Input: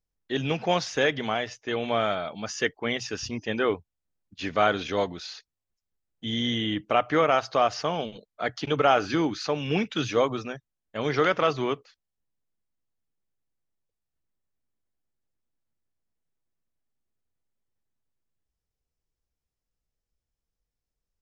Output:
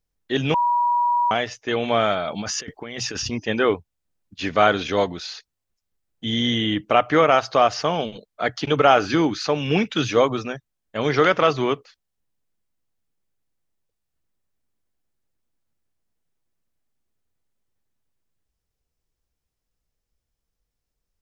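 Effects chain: 0.54–1.31 s: bleep 964 Hz -22 dBFS; 2.28–3.30 s: compressor with a negative ratio -36 dBFS, ratio -1; trim +5.5 dB

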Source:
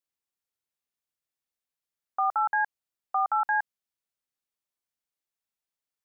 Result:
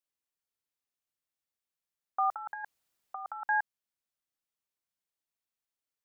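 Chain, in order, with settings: 2.30–3.44 s: compressor with a negative ratio -33 dBFS, ratio -0.5; trim -2.5 dB

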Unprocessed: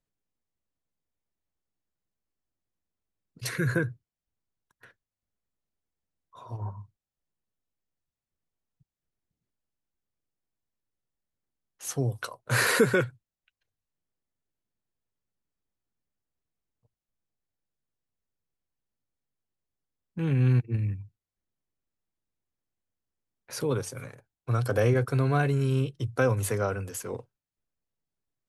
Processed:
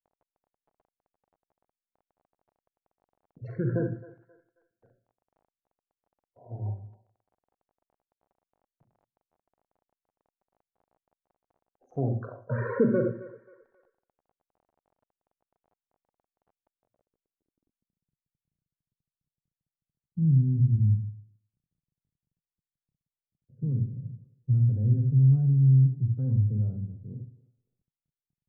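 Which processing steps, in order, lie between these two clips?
local Wiener filter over 41 samples; thinning echo 267 ms, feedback 40%, high-pass 500 Hz, level -17.5 dB; gate with hold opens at -57 dBFS; treble shelf 5.7 kHz -7.5 dB; loudest bins only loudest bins 32; on a send at -5 dB: reverberation RT60 0.40 s, pre-delay 38 ms; on the sum: crackle 25 per s -45 dBFS; in parallel at +1 dB: peak limiter -20.5 dBFS, peak gain reduction 10 dB; on the sum: low-pass sweep 760 Hz -> 150 Hz, 16.75–18.14 s; dynamic bell 220 Hz, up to +5 dB, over -37 dBFS, Q 3.9; trim -8 dB

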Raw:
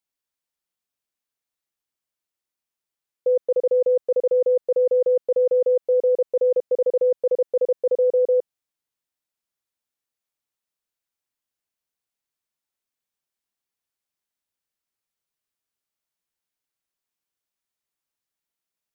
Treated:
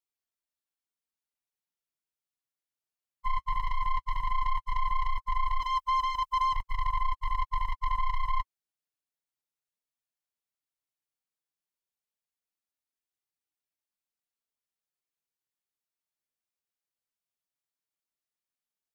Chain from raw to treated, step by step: every band turned upside down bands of 500 Hz; 5.60–6.53 s: tilt EQ +2.5 dB/octave; peak limiter -19.5 dBFS, peak gain reduction 6.5 dB; waveshaping leveller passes 2; flange 0.15 Hz, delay 2.3 ms, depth 6.6 ms, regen -34%

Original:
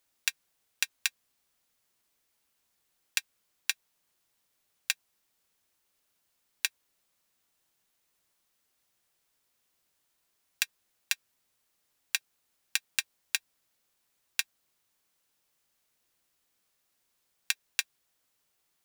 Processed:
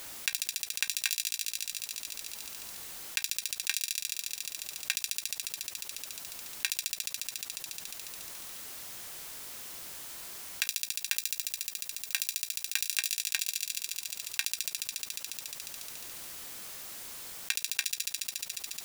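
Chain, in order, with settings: 10.63–12.89 s: treble shelf 11 kHz +6 dB; level held to a coarse grid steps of 18 dB; feedback echo behind a high-pass 71 ms, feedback 79%, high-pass 4.4 kHz, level -7.5 dB; level flattener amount 70%; trim +8 dB

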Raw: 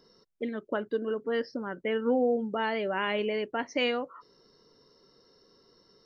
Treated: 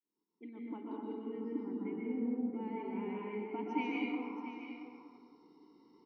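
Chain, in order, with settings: fade-in on the opening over 1.60 s; 1.15–3.51 s: FFT filter 440 Hz 0 dB, 840 Hz -15 dB, 1.8 kHz -8 dB, 2.9 kHz -15 dB; compression 3:1, threshold -36 dBFS, peak gain reduction 10 dB; vowel filter u; delay 677 ms -11 dB; plate-style reverb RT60 1.9 s, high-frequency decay 0.5×, pre-delay 110 ms, DRR -4 dB; trim +7.5 dB

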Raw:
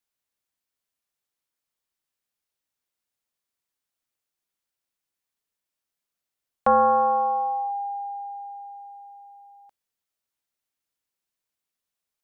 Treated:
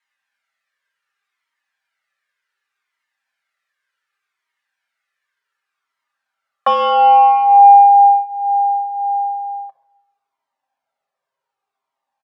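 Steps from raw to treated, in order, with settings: band-stop 370 Hz, Q 12; comb 7.5 ms, depth 47%; dynamic bell 680 Hz, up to +6 dB, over -30 dBFS, Q 1.1; band-pass sweep 1.7 kHz -> 810 Hz, 5.12–8.92 s; saturation -13.5 dBFS, distortion -18 dB; simulated room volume 2000 m³, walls furnished, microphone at 1.2 m; loudness maximiser +24 dB; Shepard-style flanger falling 0.67 Hz

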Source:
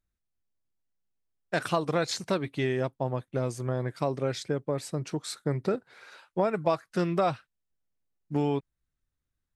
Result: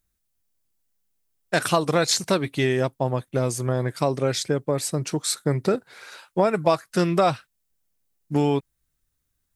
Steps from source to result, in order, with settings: treble shelf 5.9 kHz +12 dB; trim +6 dB

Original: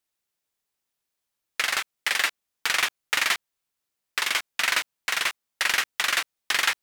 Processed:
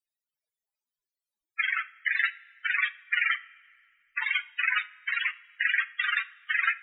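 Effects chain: 3.31–4.25 s: bass shelf 69 Hz +10 dB; loudest bins only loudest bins 16; two-slope reverb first 0.4 s, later 2.2 s, from -16 dB, DRR 13.5 dB; trim +3 dB

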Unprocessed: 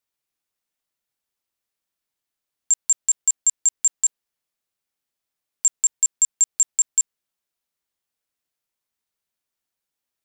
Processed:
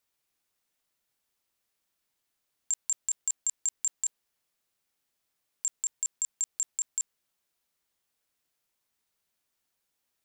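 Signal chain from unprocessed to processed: compressor with a negative ratio -21 dBFS, ratio -0.5; trim -4 dB

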